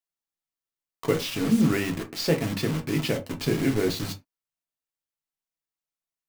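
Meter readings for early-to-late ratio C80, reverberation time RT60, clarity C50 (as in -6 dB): 25.0 dB, no single decay rate, 16.5 dB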